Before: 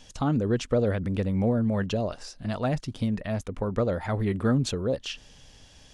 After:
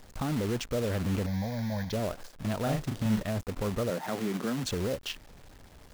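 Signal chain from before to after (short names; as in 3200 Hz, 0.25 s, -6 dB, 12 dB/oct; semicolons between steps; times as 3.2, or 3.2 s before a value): Wiener smoothing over 15 samples; limiter -23 dBFS, peak gain reduction 9 dB; companded quantiser 4-bit; 1.26–1.93 fixed phaser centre 1900 Hz, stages 8; 2.63–3.23 doubler 37 ms -3.5 dB; 3.9–4.64 steep high-pass 150 Hz 36 dB/oct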